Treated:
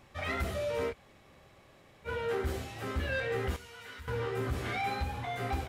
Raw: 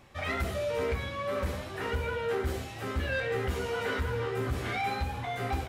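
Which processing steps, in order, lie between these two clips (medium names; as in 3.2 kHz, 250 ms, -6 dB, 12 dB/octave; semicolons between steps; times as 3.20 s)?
0.91–2.07 s: room tone, crossfade 0.06 s; 3.56–4.08 s: amplifier tone stack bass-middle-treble 5-5-5; trim -2 dB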